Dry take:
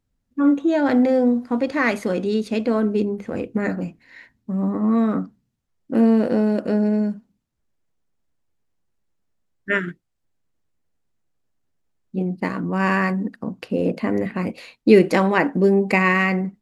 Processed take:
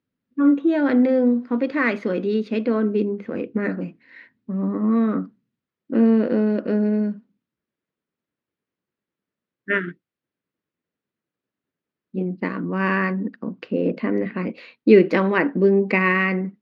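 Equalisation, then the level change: high-pass 210 Hz 12 dB/octave; distance through air 260 m; peaking EQ 770 Hz -9 dB 0.72 oct; +2.5 dB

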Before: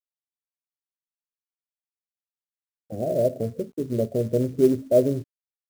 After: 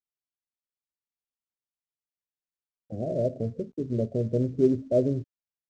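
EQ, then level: low-pass 7 kHz 24 dB/octave; bass shelf 430 Hz +9.5 dB; -9.0 dB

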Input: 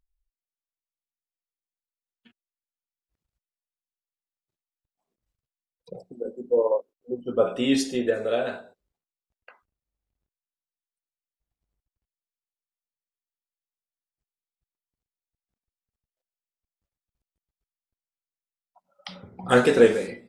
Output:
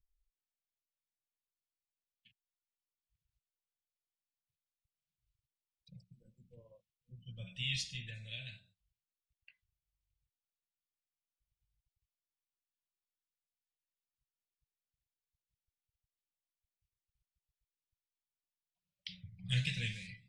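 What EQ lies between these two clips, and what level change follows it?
inverse Chebyshev band-stop 250–1400 Hz, stop band 40 dB; tape spacing loss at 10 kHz 21 dB; bass shelf 99 Hz -5.5 dB; +2.5 dB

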